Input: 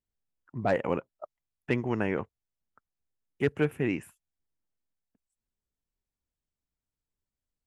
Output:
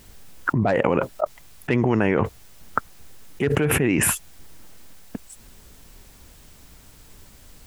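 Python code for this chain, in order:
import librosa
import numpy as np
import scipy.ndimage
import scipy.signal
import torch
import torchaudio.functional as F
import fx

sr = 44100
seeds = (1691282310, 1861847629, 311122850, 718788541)

y = fx.env_flatten(x, sr, amount_pct=100)
y = F.gain(torch.from_numpy(y), 2.0).numpy()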